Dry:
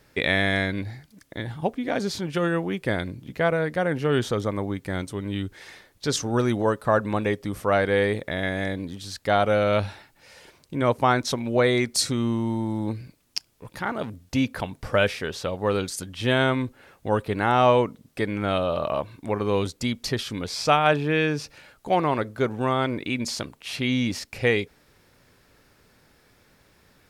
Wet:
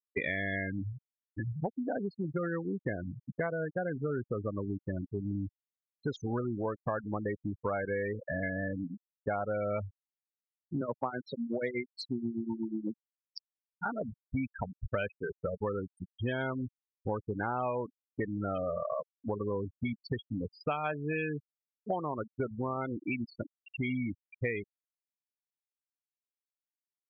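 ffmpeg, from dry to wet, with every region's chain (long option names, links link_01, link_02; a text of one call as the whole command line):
ffmpeg -i in.wav -filter_complex "[0:a]asettb=1/sr,asplit=3[link_01][link_02][link_03];[link_01]atrim=end=10.814[link_04];[link_02]atrim=start=10.81:end=13.85,asetpts=PTS-STARTPTS,afade=type=in:duration=0.004:curve=qsin,afade=type=out:start_time=3.036:duration=0.004:curve=qsin,highpass=frequency=130:width=0.5412,highpass=frequency=130:width=1.3066,tremolo=f=8.2:d=0.7[link_05];[link_03]atrim=start=13.846[link_06];[link_04][link_05]acrossfade=duration=0.004:curve1=hsin:curve2=qsin[link_07];[link_07][link_06]acrossfade=duration=0.004:curve1=qsin:curve2=hsin,afftfilt=real='re*gte(hypot(re,im),0.126)':imag='im*gte(hypot(re,im),0.126)':win_size=1024:overlap=0.75,highshelf=frequency=3800:width_type=q:width=1.5:gain=-13,acompressor=threshold=-31dB:ratio=6" out.wav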